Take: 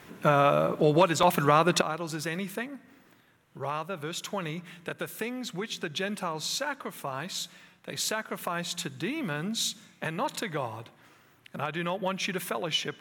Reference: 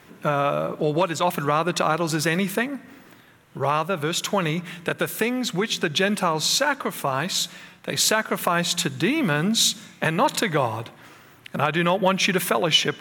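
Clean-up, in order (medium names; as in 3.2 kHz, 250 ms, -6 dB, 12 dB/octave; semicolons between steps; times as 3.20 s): interpolate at 1.23/3.37 s, 3 ms; trim 0 dB, from 1.81 s +10.5 dB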